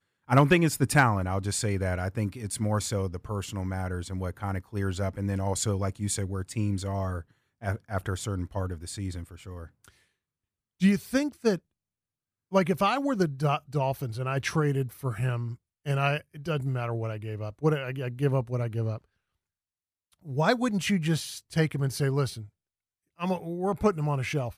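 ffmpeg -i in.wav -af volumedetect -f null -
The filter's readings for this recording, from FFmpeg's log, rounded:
mean_volume: -28.9 dB
max_volume: -9.8 dB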